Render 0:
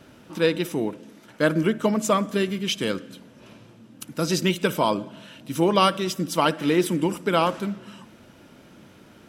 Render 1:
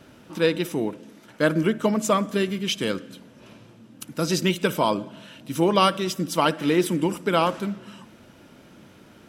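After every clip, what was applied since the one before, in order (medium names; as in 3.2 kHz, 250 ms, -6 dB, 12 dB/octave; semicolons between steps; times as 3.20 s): no audible change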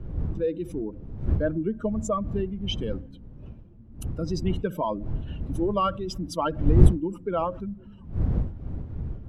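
spectral contrast enhancement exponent 2; wind noise 100 Hz -22 dBFS; trim -5.5 dB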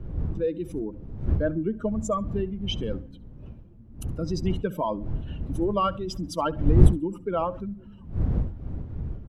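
feedback delay 69 ms, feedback 23%, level -22 dB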